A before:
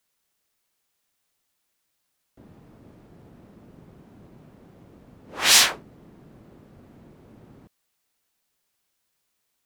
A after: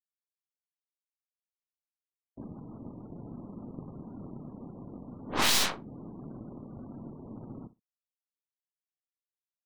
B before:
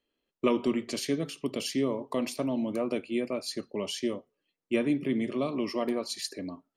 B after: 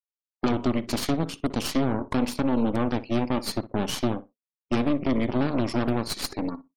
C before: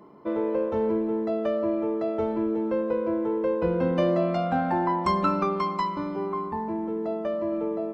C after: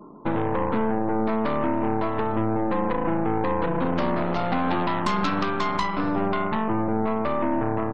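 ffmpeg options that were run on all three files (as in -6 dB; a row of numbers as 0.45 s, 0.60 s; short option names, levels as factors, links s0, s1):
-filter_complex "[0:a]acompressor=threshold=0.0355:ratio=4,aeval=exprs='0.15*(cos(1*acos(clip(val(0)/0.15,-1,1)))-cos(1*PI/2))+0.075*(cos(2*acos(clip(val(0)/0.15,-1,1)))-cos(2*PI/2))+0.0015*(cos(3*acos(clip(val(0)/0.15,-1,1)))-cos(3*PI/2))+0.00841*(cos(5*acos(clip(val(0)/0.15,-1,1)))-cos(5*PI/2))+0.0531*(cos(8*acos(clip(val(0)/0.15,-1,1)))-cos(8*PI/2))':c=same,equalizer=f=125:t=o:w=1:g=4,equalizer=f=250:t=o:w=1:g=8,equalizer=f=1000:t=o:w=1:g=5,equalizer=f=4000:t=o:w=1:g=4,afftfilt=real='re*gte(hypot(re,im),0.00447)':imag='im*gte(hypot(re,im),0.00447)':win_size=1024:overlap=0.75,asplit=2[s0][s1];[s1]adelay=61,lowpass=f=2000:p=1,volume=0.15,asplit=2[s2][s3];[s3]adelay=61,lowpass=f=2000:p=1,volume=0.15[s4];[s0][s2][s4]amix=inputs=3:normalize=0,volume=0.794"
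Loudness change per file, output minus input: -17.0 LU, +4.0 LU, +1.5 LU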